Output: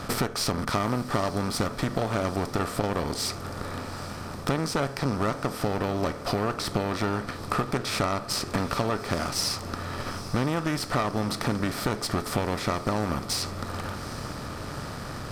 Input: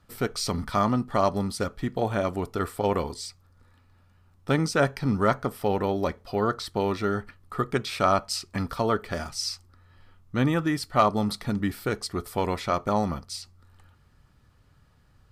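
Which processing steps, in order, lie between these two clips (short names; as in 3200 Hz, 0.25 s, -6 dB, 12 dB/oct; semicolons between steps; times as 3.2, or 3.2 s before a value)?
per-bin compression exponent 0.6; compressor 6:1, threshold -32 dBFS, peak gain reduction 17.5 dB; added harmonics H 8 -21 dB, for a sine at -17 dBFS; diffused feedback echo 0.823 s, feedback 59%, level -14.5 dB; gain +7 dB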